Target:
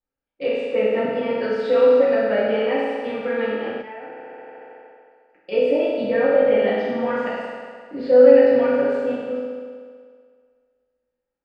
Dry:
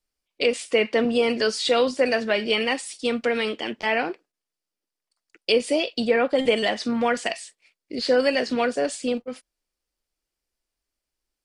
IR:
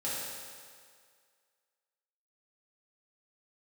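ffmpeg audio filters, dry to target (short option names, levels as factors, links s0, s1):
-filter_complex "[0:a]lowpass=1600[s0];[1:a]atrim=start_sample=2205[s1];[s0][s1]afir=irnorm=-1:irlink=0,asplit=3[s2][s3][s4];[s2]afade=t=out:st=3.81:d=0.02[s5];[s3]acompressor=threshold=0.02:ratio=4,afade=t=in:st=3.81:d=0.02,afade=t=out:st=5.51:d=0.02[s6];[s4]afade=t=in:st=5.51:d=0.02[s7];[s5][s6][s7]amix=inputs=3:normalize=0,volume=0.75"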